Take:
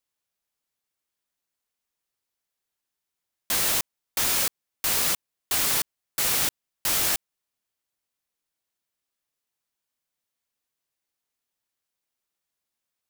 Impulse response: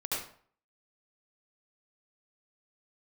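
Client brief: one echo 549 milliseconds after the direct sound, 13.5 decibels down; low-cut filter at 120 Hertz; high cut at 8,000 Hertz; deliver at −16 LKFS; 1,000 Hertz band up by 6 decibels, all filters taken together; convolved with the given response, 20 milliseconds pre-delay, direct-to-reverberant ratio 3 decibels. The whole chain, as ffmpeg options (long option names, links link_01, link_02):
-filter_complex "[0:a]highpass=120,lowpass=8000,equalizer=frequency=1000:width_type=o:gain=7.5,aecho=1:1:549:0.211,asplit=2[link_01][link_02];[1:a]atrim=start_sample=2205,adelay=20[link_03];[link_02][link_03]afir=irnorm=-1:irlink=0,volume=-8dB[link_04];[link_01][link_04]amix=inputs=2:normalize=0,volume=10dB"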